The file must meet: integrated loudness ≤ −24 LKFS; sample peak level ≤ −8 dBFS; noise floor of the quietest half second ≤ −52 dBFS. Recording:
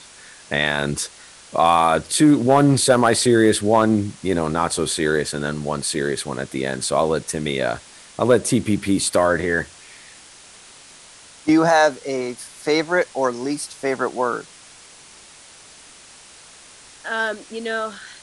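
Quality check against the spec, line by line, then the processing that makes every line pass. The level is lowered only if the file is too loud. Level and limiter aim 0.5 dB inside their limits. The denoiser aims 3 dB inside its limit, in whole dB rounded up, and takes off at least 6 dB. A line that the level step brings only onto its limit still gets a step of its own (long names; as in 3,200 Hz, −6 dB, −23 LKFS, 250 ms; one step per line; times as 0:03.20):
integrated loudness −20.0 LKFS: out of spec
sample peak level −5.0 dBFS: out of spec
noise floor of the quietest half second −45 dBFS: out of spec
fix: broadband denoise 6 dB, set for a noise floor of −45 dBFS
level −4.5 dB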